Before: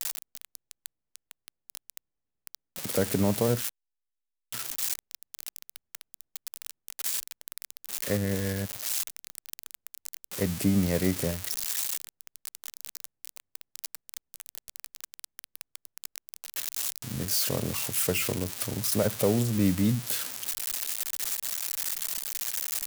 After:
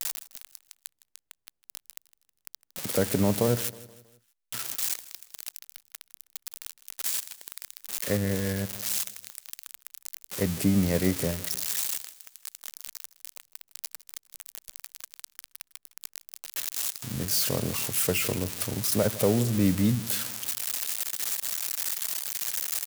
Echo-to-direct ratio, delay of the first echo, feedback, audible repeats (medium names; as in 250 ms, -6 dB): -17.5 dB, 159 ms, 47%, 3